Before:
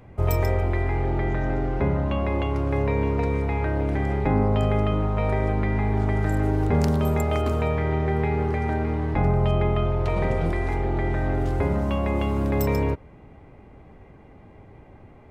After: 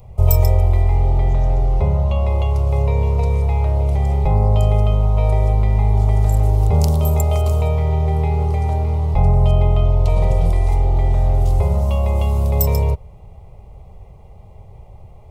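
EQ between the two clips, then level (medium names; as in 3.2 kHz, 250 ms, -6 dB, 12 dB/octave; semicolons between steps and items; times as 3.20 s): bass shelf 120 Hz +11 dB; treble shelf 5.1 kHz +11.5 dB; static phaser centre 680 Hz, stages 4; +3.0 dB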